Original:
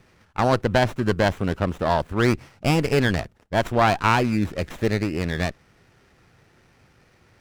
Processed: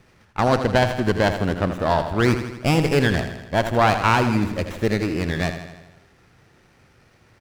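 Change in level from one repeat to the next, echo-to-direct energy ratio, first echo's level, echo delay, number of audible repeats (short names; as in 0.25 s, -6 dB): -4.5 dB, -7.5 dB, -9.5 dB, 81 ms, 6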